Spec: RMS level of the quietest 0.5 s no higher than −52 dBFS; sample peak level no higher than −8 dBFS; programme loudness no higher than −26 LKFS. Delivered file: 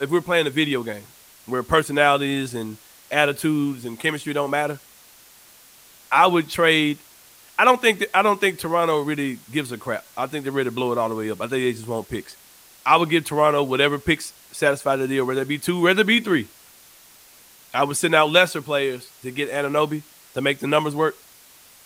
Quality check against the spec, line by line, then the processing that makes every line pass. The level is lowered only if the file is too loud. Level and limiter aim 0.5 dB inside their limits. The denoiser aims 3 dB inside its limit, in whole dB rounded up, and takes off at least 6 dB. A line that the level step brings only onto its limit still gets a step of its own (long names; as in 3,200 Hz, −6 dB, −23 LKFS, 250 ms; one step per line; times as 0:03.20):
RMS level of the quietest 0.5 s −50 dBFS: out of spec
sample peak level −2.5 dBFS: out of spec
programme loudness −21.0 LKFS: out of spec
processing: level −5.5 dB
brickwall limiter −8.5 dBFS